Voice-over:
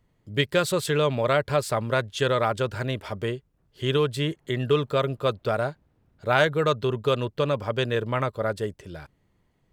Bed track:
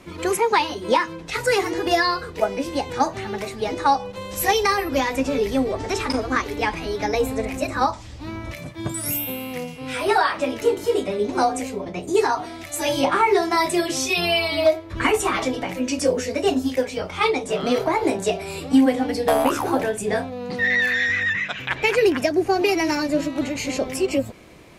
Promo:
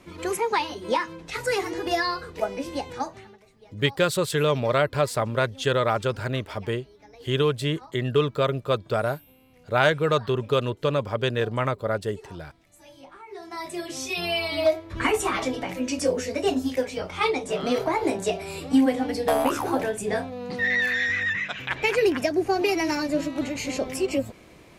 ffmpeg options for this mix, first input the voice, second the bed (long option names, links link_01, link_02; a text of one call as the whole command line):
ffmpeg -i stem1.wav -i stem2.wav -filter_complex "[0:a]adelay=3450,volume=0.5dB[link_01];[1:a]volume=18.5dB,afade=type=out:start_time=2.77:duration=0.61:silence=0.0794328,afade=type=in:start_time=13.27:duration=1.44:silence=0.0630957[link_02];[link_01][link_02]amix=inputs=2:normalize=0" out.wav